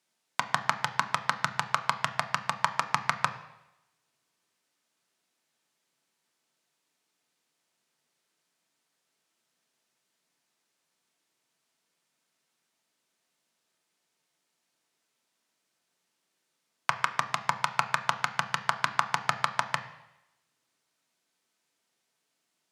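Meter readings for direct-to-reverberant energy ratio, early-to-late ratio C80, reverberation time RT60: 6.0 dB, 14.0 dB, 0.90 s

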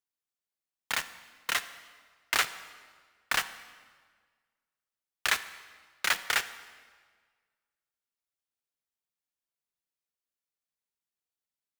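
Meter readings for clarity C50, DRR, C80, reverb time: 14.0 dB, 12.0 dB, 15.5 dB, 1.6 s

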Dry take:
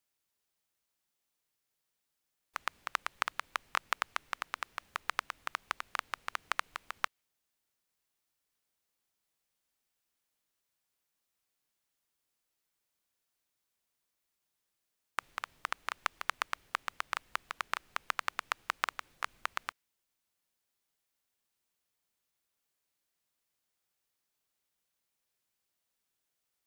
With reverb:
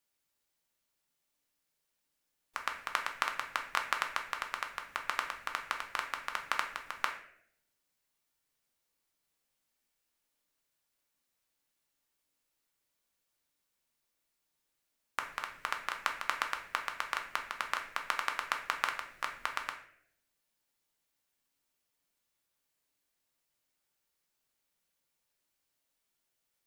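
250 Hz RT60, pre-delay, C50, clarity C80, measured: 0.85 s, 3 ms, 8.5 dB, 12.0 dB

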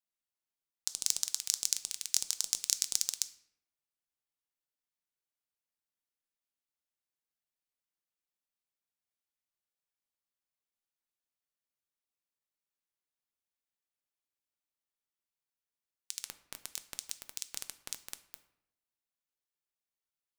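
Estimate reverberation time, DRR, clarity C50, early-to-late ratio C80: 0.75 s, 10.5 dB, 15.0 dB, 17.5 dB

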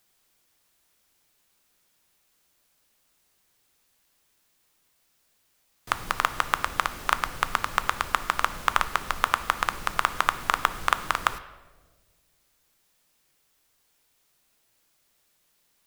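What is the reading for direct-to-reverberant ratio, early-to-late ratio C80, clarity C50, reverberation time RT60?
11.0 dB, 15.5 dB, 13.5 dB, 1.5 s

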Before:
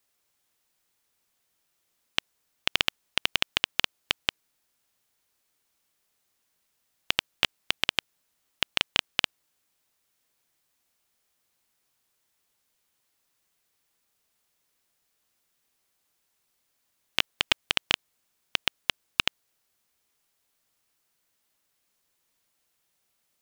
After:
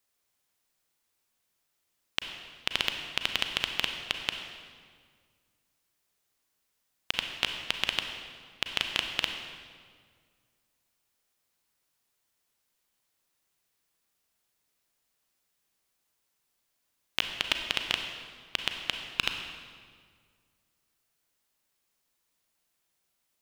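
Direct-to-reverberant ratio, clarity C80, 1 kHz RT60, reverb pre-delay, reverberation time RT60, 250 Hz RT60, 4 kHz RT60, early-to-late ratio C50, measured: 5.0 dB, 7.0 dB, 1.8 s, 32 ms, 1.9 s, 2.1 s, 1.4 s, 5.5 dB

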